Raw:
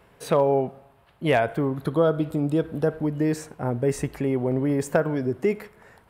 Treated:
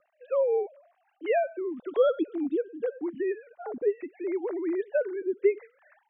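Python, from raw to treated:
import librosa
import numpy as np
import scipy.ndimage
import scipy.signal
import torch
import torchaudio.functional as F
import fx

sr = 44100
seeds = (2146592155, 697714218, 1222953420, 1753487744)

y = fx.sine_speech(x, sr)
y = fx.rotary(y, sr, hz=0.8)
y = y * librosa.db_to_amplitude(-2.5)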